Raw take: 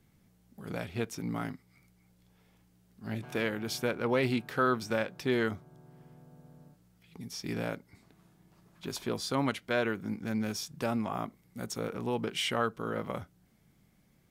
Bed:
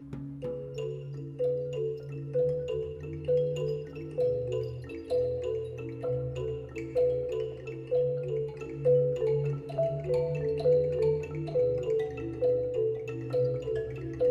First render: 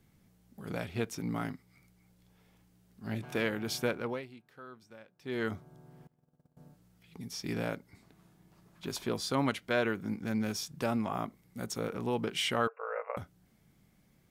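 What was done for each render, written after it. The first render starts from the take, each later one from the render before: 3.88–5.57 dip -22 dB, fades 0.38 s; 6.07–6.57 gate -52 dBFS, range -22 dB; 12.67–13.17 brick-wall FIR band-pass 420–2800 Hz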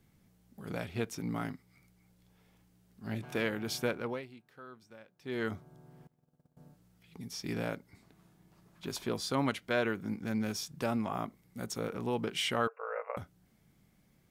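gain -1 dB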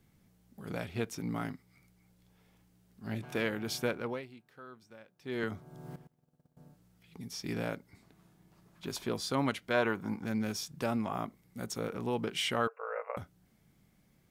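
5.43–5.96 three-band squash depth 100%; 9.73–10.24 bell 940 Hz +6.5 dB -> +14.5 dB 0.8 oct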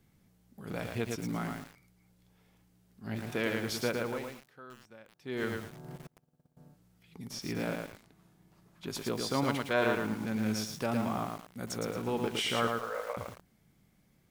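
lo-fi delay 0.111 s, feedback 35%, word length 8-bit, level -3 dB

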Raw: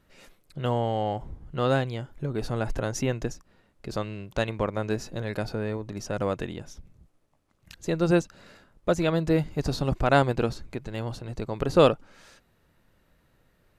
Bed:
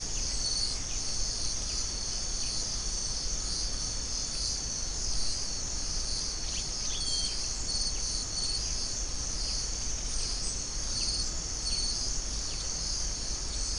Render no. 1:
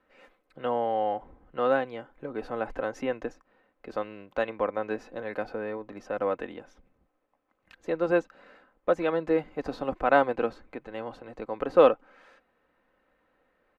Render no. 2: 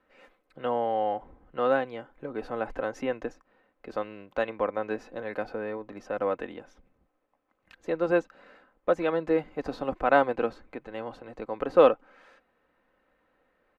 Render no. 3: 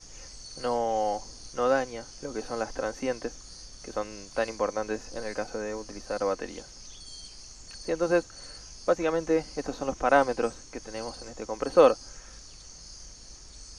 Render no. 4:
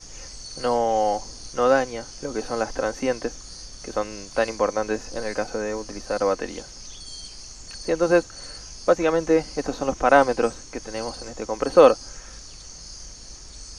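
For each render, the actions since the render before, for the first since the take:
three-band isolator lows -17 dB, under 300 Hz, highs -21 dB, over 2600 Hz; comb 3.9 ms, depth 43%
nothing audible
add bed -13.5 dB
gain +6 dB; limiter -3 dBFS, peak gain reduction 1.5 dB

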